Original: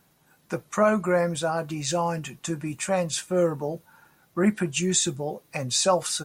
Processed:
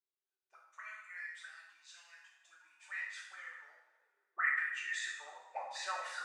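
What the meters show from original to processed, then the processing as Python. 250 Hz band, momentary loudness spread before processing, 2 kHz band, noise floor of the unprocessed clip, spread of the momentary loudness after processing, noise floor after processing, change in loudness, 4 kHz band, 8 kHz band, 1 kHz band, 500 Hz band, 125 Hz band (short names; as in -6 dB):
under -40 dB, 11 LU, -3.0 dB, -64 dBFS, 23 LU, under -85 dBFS, -14.0 dB, -18.0 dB, -24.5 dB, -15.5 dB, -32.0 dB, under -40 dB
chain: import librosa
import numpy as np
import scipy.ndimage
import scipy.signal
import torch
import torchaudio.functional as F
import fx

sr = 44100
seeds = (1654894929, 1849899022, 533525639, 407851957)

y = fx.auto_wah(x, sr, base_hz=370.0, top_hz=1900.0, q=15.0, full_db=-22.0, direction='up')
y = fx.rev_double_slope(y, sr, seeds[0], early_s=0.82, late_s=2.2, knee_db=-24, drr_db=-3.5)
y = fx.filter_sweep_highpass(y, sr, from_hz=3600.0, to_hz=670.0, start_s=2.26, end_s=6.18, q=0.96)
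y = y * 10.0 ** (6.0 / 20.0)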